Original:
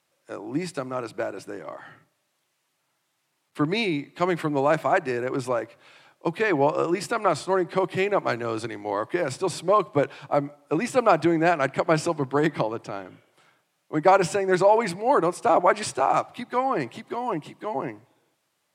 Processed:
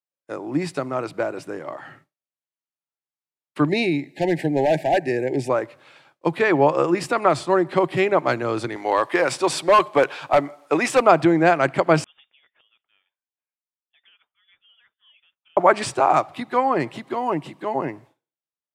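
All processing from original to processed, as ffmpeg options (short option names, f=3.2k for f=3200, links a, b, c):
-filter_complex "[0:a]asettb=1/sr,asplit=3[a][b][c];[a]atrim=end=3.694[d];[b]atrim=start=3.69:end=5.5,asetpts=PTS-STARTPTS,afade=t=in:d=0.004:c=qsin,afade=t=out:st=1.806:d=0.004:c=qsin,equalizer=f=3.3k:w=2.9:g=-4.5,volume=16.5dB,asoftclip=hard,volume=-16.5dB,asuperstop=centerf=1200:order=12:qfactor=1.6[e];[c]atrim=start=5.496[f];[d][e]acrossfade=d=0.004:c1=hsin:c2=qsin[g];[g][f]acrossfade=d=0.004:c1=qsin:c2=hsin,asettb=1/sr,asplit=3[h][i][j];[h]atrim=end=8.764[k];[i]atrim=start=8.76:end=11.01,asetpts=PTS-STARTPTS,afade=t=in:d=0.004:c=qsin,afade=t=out:st=2.246:d=0.004:c=qsin,highpass=f=690:p=1,acontrast=56,asoftclip=type=hard:threshold=-14dB[l];[j]atrim=start=11.006[m];[k][l]acrossfade=d=0.004:c1=hsin:c2=qsin[n];[n][m]acrossfade=d=0.004:c1=qsin:c2=hsin,asettb=1/sr,asplit=3[o][p][q];[o]atrim=end=12.044[r];[p]atrim=start=12.04:end=15.57,asetpts=PTS-STARTPTS,afade=t=in:d=0.004:c=qsin,afade=t=out:st=3.526:d=0.004:c=qsin,aderivative,acompressor=threshold=-51dB:ratio=16:attack=3.2:release=140:knee=1:detection=peak,lowpass=f=3.2k:t=q:w=0.5098,lowpass=f=3.2k:t=q:w=0.6013,lowpass=f=3.2k:t=q:w=0.9,lowpass=f=3.2k:t=q:w=2.563,afreqshift=-3800[s];[q]atrim=start=15.566[t];[r][s]acrossfade=d=0.004:c1=hsin:c2=qsin[u];[u][t]acrossfade=d=0.004:c1=qsin:c2=hsin,agate=range=-33dB:threshold=-49dB:ratio=3:detection=peak,highshelf=f=5.5k:g=-5.5,volume=4.5dB"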